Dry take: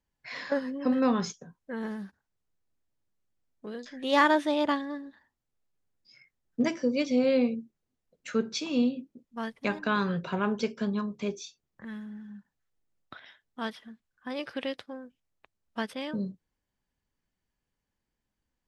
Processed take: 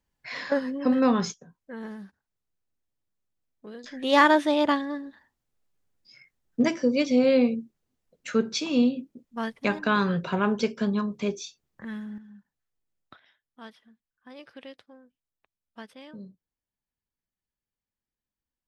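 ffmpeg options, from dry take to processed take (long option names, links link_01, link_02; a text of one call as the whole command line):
ffmpeg -i in.wav -af "asetnsamples=nb_out_samples=441:pad=0,asendcmd='1.34 volume volume -3dB;3.84 volume volume 4dB;12.18 volume volume -4dB;13.16 volume volume -10.5dB',volume=3.5dB" out.wav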